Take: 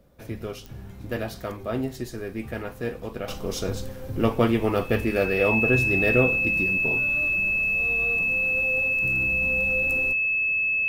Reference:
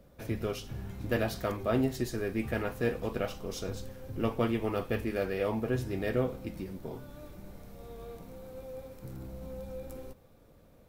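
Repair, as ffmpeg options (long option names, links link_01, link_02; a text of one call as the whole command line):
ffmpeg -i in.wav -af "adeclick=threshold=4,bandreject=frequency=2600:width=30,asetnsamples=nb_out_samples=441:pad=0,asendcmd='3.28 volume volume -8.5dB',volume=0dB" out.wav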